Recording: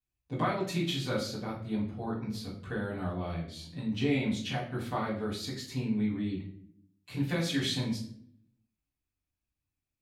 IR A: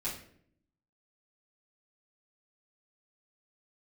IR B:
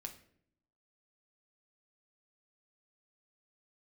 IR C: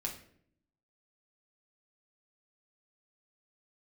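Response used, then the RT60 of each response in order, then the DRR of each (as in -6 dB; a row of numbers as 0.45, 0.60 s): A; 0.60, 0.65, 0.60 s; -9.5, 4.0, -0.5 dB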